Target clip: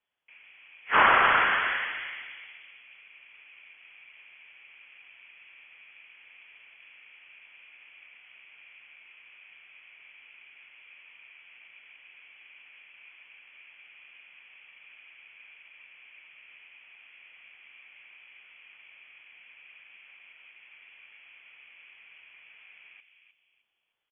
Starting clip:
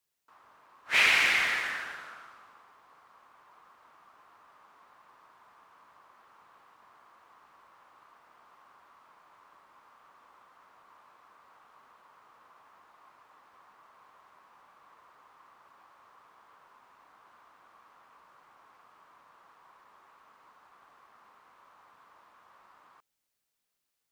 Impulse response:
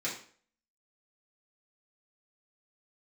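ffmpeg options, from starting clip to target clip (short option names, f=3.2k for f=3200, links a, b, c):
-filter_complex "[0:a]equalizer=f=2.2k:w=1.5:g=-2.5,asplit=2[a][b];[b]adelay=307,lowpass=f=820:p=1,volume=-4dB,asplit=2[c][d];[d]adelay=307,lowpass=f=820:p=1,volume=0.47,asplit=2[e][f];[f]adelay=307,lowpass=f=820:p=1,volume=0.47,asplit=2[g][h];[h]adelay=307,lowpass=f=820:p=1,volume=0.47,asplit=2[i][j];[j]adelay=307,lowpass=f=820:p=1,volume=0.47,asplit=2[k][l];[l]adelay=307,lowpass=f=820:p=1,volume=0.47[m];[a][c][e][g][i][k][m]amix=inputs=7:normalize=0,lowpass=f=3k:t=q:w=0.5098,lowpass=f=3k:t=q:w=0.6013,lowpass=f=3k:t=q:w=0.9,lowpass=f=3k:t=q:w=2.563,afreqshift=-3500,volume=6dB"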